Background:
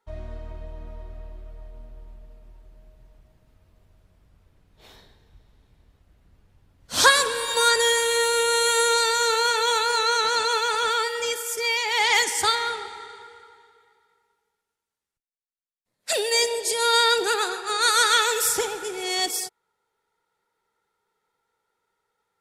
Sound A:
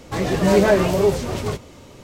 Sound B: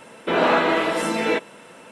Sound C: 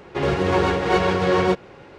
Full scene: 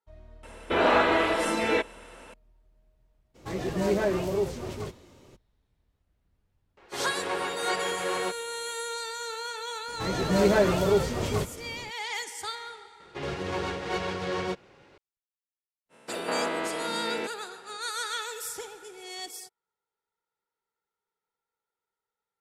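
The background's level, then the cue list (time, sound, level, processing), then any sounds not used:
background -14 dB
0.43 add B -3 dB + resonant low shelf 110 Hz +9 dB, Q 3
3.34 add A -11.5 dB, fades 0.02 s + bell 360 Hz +6 dB 0.21 oct
6.77 add C -9 dB + weighting filter A
9.88 add A -8.5 dB + AGC
13 add C -13 dB + high shelf 2500 Hz +8.5 dB
15.89 add B -10 dB, fades 0.05 s + stepped spectrum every 0.2 s

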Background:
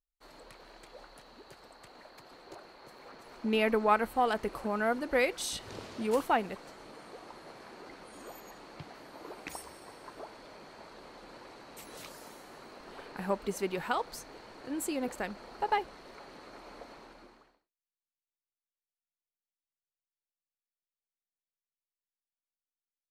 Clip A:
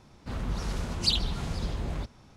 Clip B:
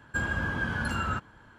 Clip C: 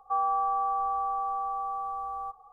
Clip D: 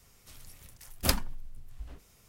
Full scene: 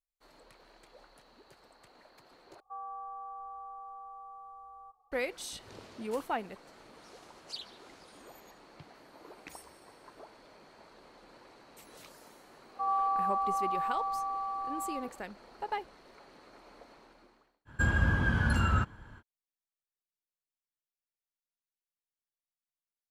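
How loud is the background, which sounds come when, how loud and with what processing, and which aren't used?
background -6 dB
2.6 replace with C -15.5 dB
6.46 add A -16 dB + HPF 1500 Hz 6 dB/oct
12.69 add C -5.5 dB + echo 78 ms -5 dB
17.65 add B -1 dB, fades 0.05 s + low shelf 130 Hz +11 dB
not used: D

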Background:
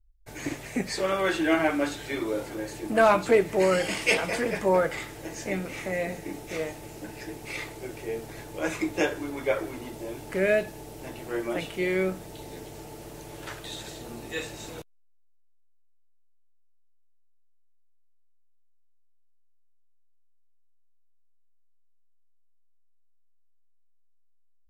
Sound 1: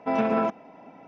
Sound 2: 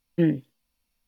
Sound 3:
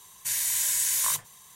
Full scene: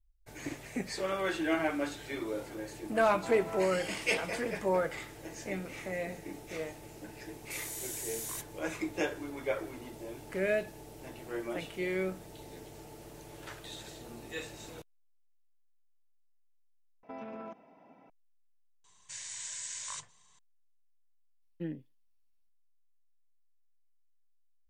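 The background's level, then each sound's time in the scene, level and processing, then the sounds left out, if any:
background -7 dB
3.16 add 1 -14 dB + band-pass 1100 Hz, Q 0.75
7.25 add 3 -14.5 dB
17.03 replace with 1 -11 dB + compressor, threshold -29 dBFS
18.84 add 3 -11.5 dB + steep low-pass 8300 Hz 72 dB/oct
21.42 add 2 -17 dB

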